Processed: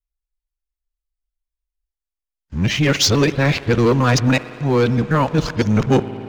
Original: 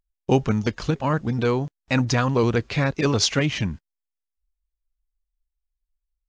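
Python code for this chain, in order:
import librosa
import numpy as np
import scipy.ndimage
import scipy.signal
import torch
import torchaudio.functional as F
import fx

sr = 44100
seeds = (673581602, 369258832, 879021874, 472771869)

y = np.flip(x).copy()
y = fx.rev_spring(y, sr, rt60_s=3.5, pass_ms=(56,), chirp_ms=60, drr_db=15.5)
y = fx.leveller(y, sr, passes=2)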